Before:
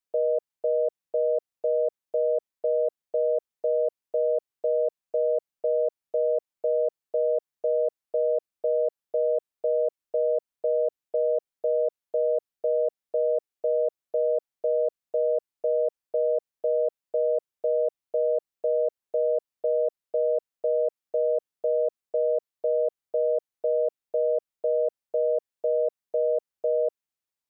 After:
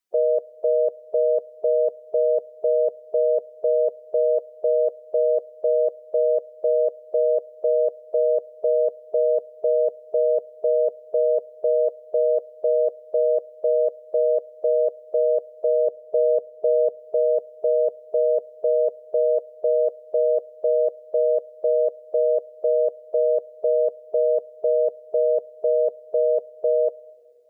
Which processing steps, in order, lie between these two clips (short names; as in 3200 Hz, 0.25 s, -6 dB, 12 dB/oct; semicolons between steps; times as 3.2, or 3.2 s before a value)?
bin magnitudes rounded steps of 15 dB; 15.87–17 tilt shelf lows +3 dB, about 730 Hz; on a send: reverb RT60 1.9 s, pre-delay 24 ms, DRR 21 dB; on the sum: gain +5 dB